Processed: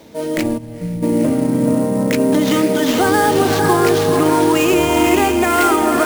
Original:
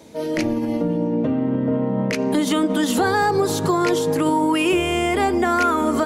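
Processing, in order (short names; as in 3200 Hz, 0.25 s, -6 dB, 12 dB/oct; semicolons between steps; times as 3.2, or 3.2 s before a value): diffused feedback echo 0.484 s, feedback 42%, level -3 dB; spectral gain 0.57–1.03, 210–12000 Hz -15 dB; sample-rate reducer 9800 Hz, jitter 20%; gain +3 dB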